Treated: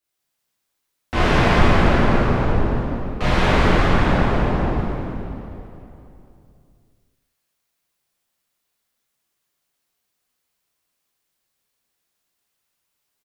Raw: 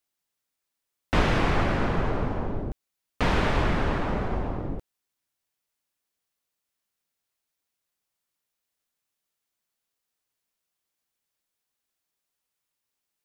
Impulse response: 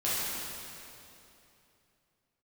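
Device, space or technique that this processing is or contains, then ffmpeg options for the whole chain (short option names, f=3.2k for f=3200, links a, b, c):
cave: -filter_complex "[0:a]aecho=1:1:203:0.355[a];[1:a]atrim=start_sample=2205[b];[a][b]afir=irnorm=-1:irlink=0,volume=-2dB"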